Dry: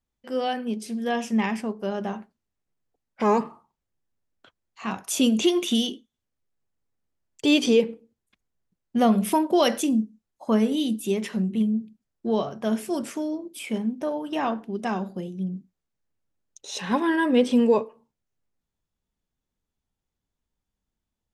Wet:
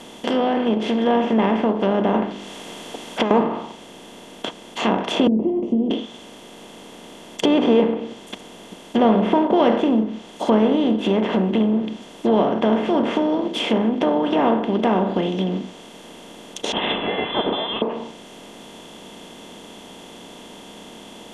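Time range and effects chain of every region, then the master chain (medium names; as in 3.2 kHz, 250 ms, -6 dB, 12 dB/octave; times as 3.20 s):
2.14–3.31 s: hum notches 50/100/150/200/250/300/350/400 Hz + compressor with a negative ratio -31 dBFS + tape noise reduction on one side only encoder only
5.27–5.91 s: inverse Chebyshev low-pass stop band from 1.4 kHz, stop band 70 dB + comb of notches 150 Hz
16.72–17.82 s: expander -30 dBFS + frequency inversion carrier 3.7 kHz + dynamic bell 400 Hz, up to +7 dB, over -58 dBFS, Q 3.8
whole clip: spectral levelling over time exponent 0.4; low-pass that closes with the level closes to 1.5 kHz, closed at -14.5 dBFS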